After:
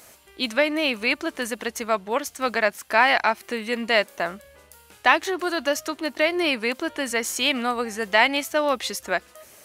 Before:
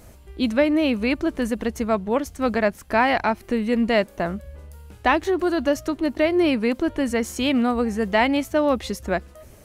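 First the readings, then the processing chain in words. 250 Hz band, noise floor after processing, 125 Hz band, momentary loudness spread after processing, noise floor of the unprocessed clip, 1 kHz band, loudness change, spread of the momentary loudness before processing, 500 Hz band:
-8.5 dB, -53 dBFS, -13.0 dB, 9 LU, -48 dBFS, +0.5 dB, -1.0 dB, 7 LU, -3.0 dB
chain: high-pass 1.5 kHz 6 dB/octave; trim +6.5 dB

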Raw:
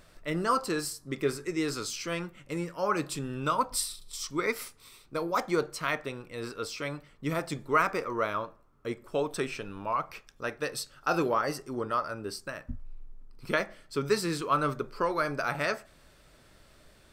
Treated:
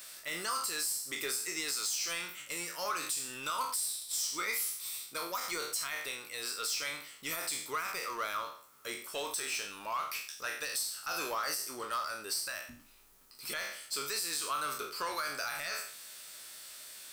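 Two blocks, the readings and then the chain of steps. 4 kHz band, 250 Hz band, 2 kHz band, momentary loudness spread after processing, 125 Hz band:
+3.5 dB, -16.5 dB, -3.0 dB, 9 LU, -21.0 dB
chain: spectral sustain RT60 0.38 s; differentiator; compression 6:1, threshold -40 dBFS, peak gain reduction 14.5 dB; peak limiter -33.5 dBFS, peak gain reduction 9.5 dB; power-law waveshaper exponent 0.7; trim +8 dB

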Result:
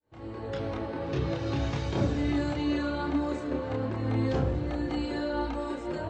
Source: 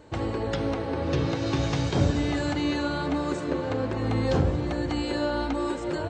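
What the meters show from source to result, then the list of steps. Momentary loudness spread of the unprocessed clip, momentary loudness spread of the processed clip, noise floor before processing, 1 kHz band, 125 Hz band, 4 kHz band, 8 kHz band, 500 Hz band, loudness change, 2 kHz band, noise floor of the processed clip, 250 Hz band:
5 LU, 6 LU, -32 dBFS, -4.0 dB, -4.0 dB, -6.5 dB, no reading, -4.0 dB, -3.5 dB, -5.0 dB, -39 dBFS, -2.5 dB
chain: fade-in on the opening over 0.67 s; chorus voices 4, 0.44 Hz, delay 29 ms, depth 2.2 ms; treble shelf 6 kHz -10 dB; trim -1 dB

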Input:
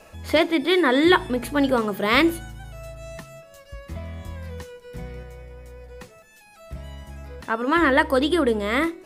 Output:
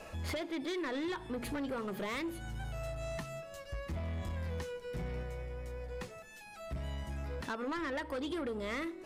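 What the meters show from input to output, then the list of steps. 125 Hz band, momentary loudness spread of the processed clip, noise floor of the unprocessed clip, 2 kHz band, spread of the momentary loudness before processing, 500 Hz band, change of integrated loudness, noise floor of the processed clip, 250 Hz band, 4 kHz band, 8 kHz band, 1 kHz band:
-5.0 dB, 8 LU, -50 dBFS, -18.0 dB, 21 LU, -16.0 dB, -19.5 dB, -51 dBFS, -16.5 dB, -18.0 dB, -10.0 dB, -17.5 dB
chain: treble shelf 9.7 kHz -8 dB; compression 8:1, threshold -30 dBFS, peak gain reduction 18.5 dB; saturation -32.5 dBFS, distortion -11 dB

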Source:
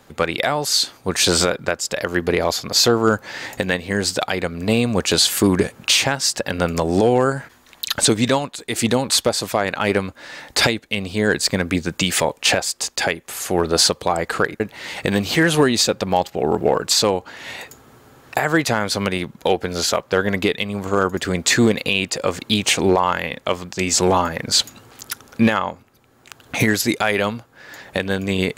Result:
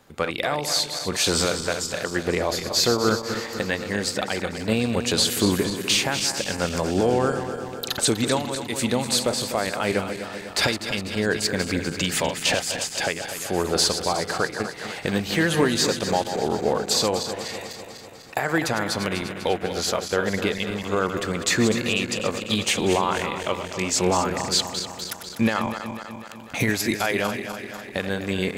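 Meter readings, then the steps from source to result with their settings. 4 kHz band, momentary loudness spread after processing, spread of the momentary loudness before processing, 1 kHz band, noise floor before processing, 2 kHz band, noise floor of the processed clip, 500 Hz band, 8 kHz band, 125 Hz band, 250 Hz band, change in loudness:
-4.5 dB, 9 LU, 10 LU, -4.5 dB, -52 dBFS, -4.5 dB, -38 dBFS, -4.5 dB, -4.5 dB, -4.5 dB, -4.5 dB, -4.5 dB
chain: backward echo that repeats 124 ms, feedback 77%, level -9 dB; trim -5.5 dB

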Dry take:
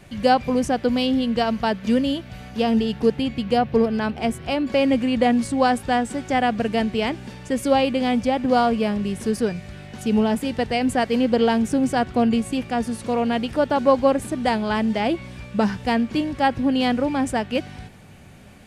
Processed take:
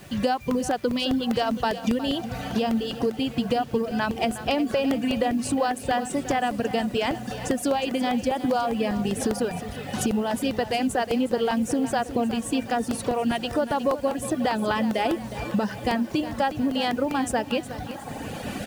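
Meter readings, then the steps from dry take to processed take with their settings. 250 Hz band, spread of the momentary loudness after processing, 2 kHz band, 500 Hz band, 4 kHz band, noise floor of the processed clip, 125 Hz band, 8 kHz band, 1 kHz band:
-4.5 dB, 4 LU, -3.0 dB, -4.0 dB, -1.5 dB, -38 dBFS, -3.0 dB, +3.0 dB, -3.5 dB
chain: recorder AGC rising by 15 dB/s; echo that smears into a reverb 893 ms, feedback 72%, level -16 dB; reverb removal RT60 1.8 s; band-stop 2.2 kHz, Q 12; compression 6:1, threshold -23 dBFS, peak gain reduction 11 dB; bit crusher 9-bit; bass shelf 65 Hz -10 dB; feedback delay 363 ms, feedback 47%, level -13 dB; crackling interface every 0.20 s, samples 64, repeat, from 0.51 s; trim +2.5 dB

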